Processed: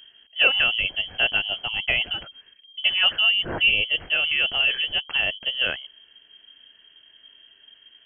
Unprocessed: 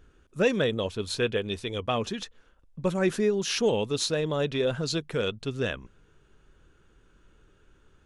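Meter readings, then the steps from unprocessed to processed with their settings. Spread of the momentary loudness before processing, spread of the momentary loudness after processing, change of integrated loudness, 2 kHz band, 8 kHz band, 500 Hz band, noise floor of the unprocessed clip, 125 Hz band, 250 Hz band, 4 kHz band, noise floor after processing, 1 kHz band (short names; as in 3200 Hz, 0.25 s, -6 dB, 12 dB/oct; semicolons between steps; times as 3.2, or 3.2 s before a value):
7 LU, 8 LU, +7.5 dB, +14.0 dB, under -40 dB, -10.5 dB, -62 dBFS, -11.0 dB, -14.0 dB, +14.0 dB, -57 dBFS, +0.5 dB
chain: inverted band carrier 3200 Hz; gain +4.5 dB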